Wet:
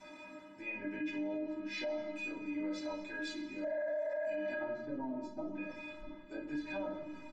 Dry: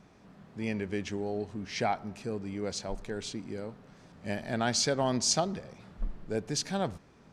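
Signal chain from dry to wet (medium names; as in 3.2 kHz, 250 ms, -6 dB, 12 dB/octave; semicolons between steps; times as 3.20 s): octave divider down 1 oct, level -4 dB; doubling 23 ms -11.5 dB; low-pass that closes with the level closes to 400 Hz, closed at -23.5 dBFS; inharmonic resonator 300 Hz, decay 0.29 s, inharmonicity 0.008; reverberation RT60 0.85 s, pre-delay 3 ms, DRR -6 dB; spectral replace 3.68–4.33 s, 390–2200 Hz after; low-pass 3 kHz 6 dB/octave; bass shelf 280 Hz -12 dB; reverse; upward compressor, threshold -53 dBFS; reverse; peak limiter -44 dBFS, peak gain reduction 12 dB; trim +13 dB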